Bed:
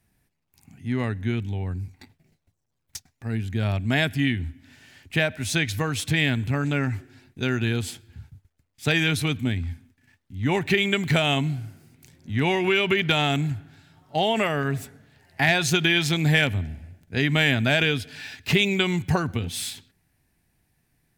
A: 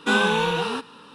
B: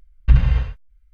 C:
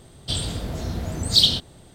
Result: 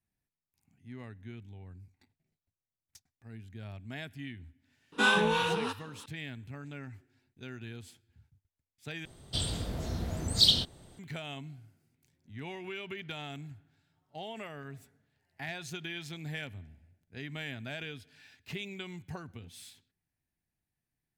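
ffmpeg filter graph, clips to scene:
-filter_complex "[0:a]volume=0.106[s0];[1:a]acrossover=split=730[s1][s2];[s1]aeval=exprs='val(0)*(1-0.7/2+0.7/2*cos(2*PI*3*n/s))':c=same[s3];[s2]aeval=exprs='val(0)*(1-0.7/2-0.7/2*cos(2*PI*3*n/s))':c=same[s4];[s3][s4]amix=inputs=2:normalize=0[s5];[s0]asplit=2[s6][s7];[s6]atrim=end=9.054[s8];[3:a]atrim=end=1.94,asetpts=PTS-STARTPTS,volume=0.473[s9];[s7]atrim=start=10.986[s10];[s5]atrim=end=1.14,asetpts=PTS-STARTPTS,volume=0.75,afade=t=in:d=0.004:c=hsin,afade=t=out:st=1.136:d=0.004:c=hsin,adelay=4920[s11];[s8][s9]acrossfade=d=0.004:c1=hsin:c2=hsin[s12];[s12][s10]acrossfade=d=0.004:c1=hsin:c2=hsin[s13];[s13][s11]amix=inputs=2:normalize=0"

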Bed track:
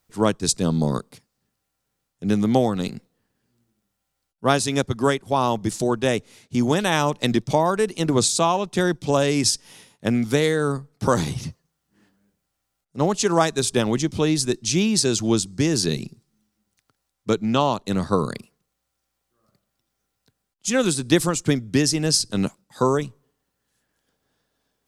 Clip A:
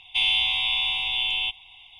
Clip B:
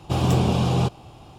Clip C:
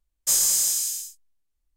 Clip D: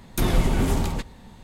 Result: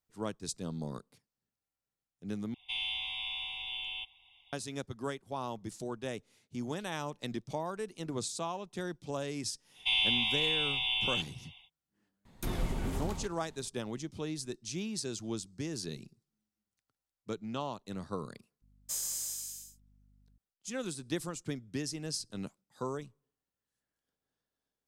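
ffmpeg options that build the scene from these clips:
-filter_complex "[1:a]asplit=2[s0][s1];[0:a]volume=0.133[s2];[3:a]aeval=exprs='val(0)+0.00398*(sin(2*PI*50*n/s)+sin(2*PI*2*50*n/s)/2+sin(2*PI*3*50*n/s)/3+sin(2*PI*4*50*n/s)/4+sin(2*PI*5*50*n/s)/5)':c=same[s3];[s2]asplit=2[s4][s5];[s4]atrim=end=2.544[s6];[s0]atrim=end=1.99,asetpts=PTS-STARTPTS,volume=0.2[s7];[s5]atrim=start=4.526[s8];[s1]atrim=end=1.99,asetpts=PTS-STARTPTS,volume=0.473,afade=t=in:d=0.1,afade=t=out:st=1.89:d=0.1,adelay=9710[s9];[4:a]atrim=end=1.43,asetpts=PTS-STARTPTS,volume=0.224,afade=t=in:d=0.004:c=hsin,afade=t=out:st=1.426:d=0.004:c=hsin,adelay=12250[s10];[s3]atrim=end=1.76,asetpts=PTS-STARTPTS,volume=0.168,afade=t=in:d=0.004:c=hsin,afade=t=out:st=1.756:d=0.004:c=hsin,adelay=18620[s11];[s6][s7]acrossfade=d=0.004:c1=hsin:c2=hsin[s12];[s12][s8]acrossfade=d=0.004:c1=hsin:c2=hsin[s13];[s13][s9][s10][s11]amix=inputs=4:normalize=0"

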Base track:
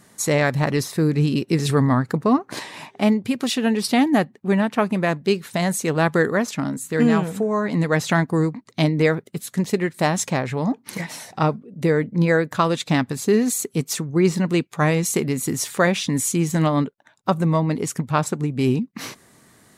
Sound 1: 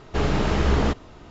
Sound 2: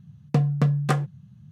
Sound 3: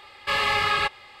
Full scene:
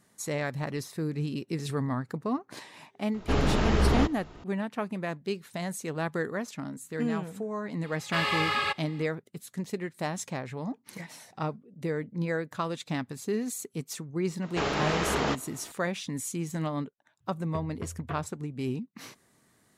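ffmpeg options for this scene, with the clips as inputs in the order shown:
-filter_complex "[1:a]asplit=2[s0][s1];[0:a]volume=0.237[s2];[3:a]highpass=86[s3];[s1]highpass=f=500:p=1[s4];[2:a]highpass=f=180:t=q:w=0.5412,highpass=f=180:t=q:w=1.307,lowpass=f=3400:t=q:w=0.5176,lowpass=f=3400:t=q:w=0.7071,lowpass=f=3400:t=q:w=1.932,afreqshift=-59[s5];[s0]atrim=end=1.3,asetpts=PTS-STARTPTS,volume=0.708,afade=t=in:d=0.004:c=hsin,afade=t=out:st=1.296:d=0.004:c=hsin,adelay=3140[s6];[s3]atrim=end=1.2,asetpts=PTS-STARTPTS,volume=0.562,afade=t=in:d=0.004:c=hsin,afade=t=out:st=1.196:d=0.004:c=hsin,adelay=7850[s7];[s4]atrim=end=1.3,asetpts=PTS-STARTPTS,volume=0.944,afade=t=in:d=0.004:c=hsin,afade=t=out:st=1.296:d=0.004:c=hsin,adelay=14420[s8];[s5]atrim=end=1.51,asetpts=PTS-STARTPTS,volume=0.224,afade=t=in:d=0.004:c=hsin,afade=t=out:st=1.506:d=0.004:c=hsin,adelay=17200[s9];[s2][s6][s7][s8][s9]amix=inputs=5:normalize=0"

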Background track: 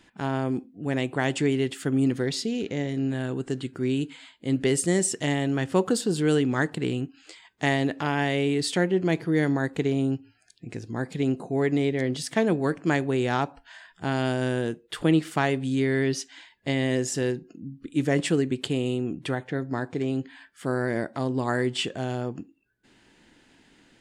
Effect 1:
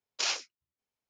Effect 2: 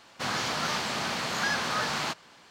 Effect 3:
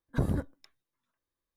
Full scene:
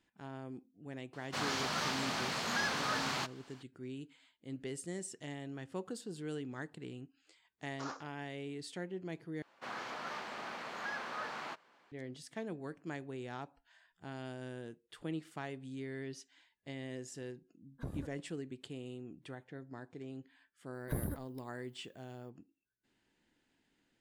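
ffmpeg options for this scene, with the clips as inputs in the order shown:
-filter_complex "[2:a]asplit=2[s0][s1];[3:a]asplit=2[s2][s3];[0:a]volume=0.112[s4];[1:a]highshelf=f=1800:t=q:w=3:g=-12.5[s5];[s1]acrossover=split=240 2600:gain=0.2 1 0.251[s6][s7][s8];[s6][s7][s8]amix=inputs=3:normalize=0[s9];[s3]aexciter=amount=11.5:drive=6.5:freq=9900[s10];[s4]asplit=2[s11][s12];[s11]atrim=end=9.424[s13];[s9]atrim=end=2.5,asetpts=PTS-STARTPTS,volume=0.299[s14];[s12]atrim=start=11.916[s15];[s0]atrim=end=2.5,asetpts=PTS-STARTPTS,volume=0.501,afade=t=in:d=0.004:c=hsin,afade=t=out:st=2.496:d=0.004:c=hsin,adelay=1130[s16];[s5]atrim=end=1.09,asetpts=PTS-STARTPTS,volume=0.355,afade=t=in:d=0.004:c=hsin,afade=t=out:st=1.086:d=0.004:c=hsin,adelay=7600[s17];[s2]atrim=end=1.56,asetpts=PTS-STARTPTS,volume=0.188,afade=t=in:d=0.004:c=hsin,afade=t=out:st=1.556:d=0.004:c=hsin,adelay=17650[s18];[s10]atrim=end=1.56,asetpts=PTS-STARTPTS,volume=0.355,afade=t=in:d=0.004:c=hsin,afade=t=out:st=1.556:d=0.004:c=hsin,adelay=20740[s19];[s13][s14]acrossfade=d=0.004:c1=hsin:c2=hsin[s20];[s20][s15]acrossfade=d=0.004:c1=hsin:c2=hsin[s21];[s21][s16][s17][s18][s19]amix=inputs=5:normalize=0"

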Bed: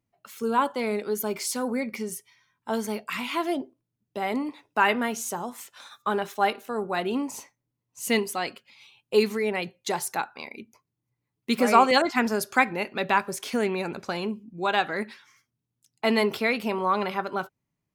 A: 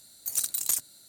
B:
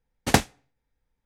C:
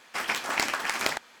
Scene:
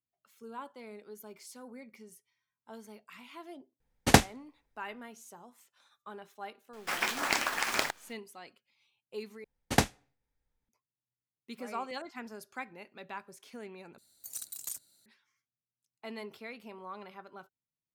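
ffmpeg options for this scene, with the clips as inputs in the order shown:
-filter_complex "[2:a]asplit=2[s0][s1];[0:a]volume=0.1[s2];[3:a]acrusher=bits=7:dc=4:mix=0:aa=0.000001[s3];[s2]asplit=3[s4][s5][s6];[s4]atrim=end=9.444[s7];[s1]atrim=end=1.25,asetpts=PTS-STARTPTS,volume=0.501[s8];[s5]atrim=start=10.686:end=13.984[s9];[1:a]atrim=end=1.08,asetpts=PTS-STARTPTS,volume=0.224[s10];[s6]atrim=start=15.056[s11];[s0]atrim=end=1.25,asetpts=PTS-STARTPTS,volume=0.944,afade=t=in:d=0.004:c=hsin,afade=t=out:st=1.246:d=0.004:c=hsin,adelay=3800[s12];[s3]atrim=end=1.4,asetpts=PTS-STARTPTS,volume=0.75,afade=t=in:d=0.004:c=hsin,afade=t=out:st=1.396:d=0.004:c=hsin,adelay=6730[s13];[s7][s8]acrossfade=d=0.004:c1=hsin:c2=hsin[s14];[s14][s9]acrossfade=d=0.004:c1=hsin:c2=hsin[s15];[s15][s10]acrossfade=d=0.004:c1=hsin:c2=hsin[s16];[s16][s11]acrossfade=d=0.004:c1=hsin:c2=hsin[s17];[s17][s12][s13]amix=inputs=3:normalize=0"

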